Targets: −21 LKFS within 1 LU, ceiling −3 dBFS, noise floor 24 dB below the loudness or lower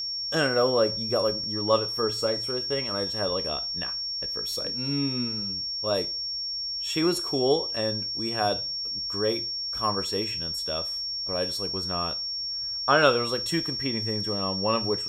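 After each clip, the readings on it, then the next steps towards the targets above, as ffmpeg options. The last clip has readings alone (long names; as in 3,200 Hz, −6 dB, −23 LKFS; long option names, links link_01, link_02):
interfering tone 5,500 Hz; level of the tone −29 dBFS; integrated loudness −26.0 LKFS; sample peak −6.0 dBFS; target loudness −21.0 LKFS
→ -af "bandreject=frequency=5500:width=30"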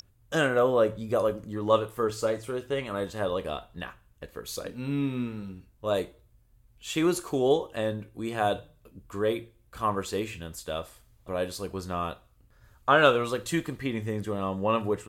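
interfering tone none found; integrated loudness −29.0 LKFS; sample peak −6.5 dBFS; target loudness −21.0 LKFS
→ -af "volume=8dB,alimiter=limit=-3dB:level=0:latency=1"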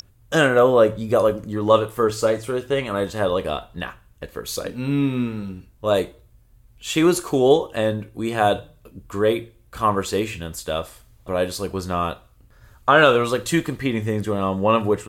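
integrated loudness −21.0 LKFS; sample peak −3.0 dBFS; background noise floor −54 dBFS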